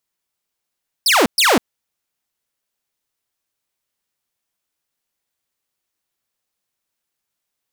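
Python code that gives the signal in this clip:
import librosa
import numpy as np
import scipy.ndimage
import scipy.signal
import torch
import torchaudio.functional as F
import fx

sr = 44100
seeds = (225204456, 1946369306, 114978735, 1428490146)

y = fx.laser_zaps(sr, level_db=-8, start_hz=5600.0, end_hz=200.0, length_s=0.2, wave='saw', shots=2, gap_s=0.12)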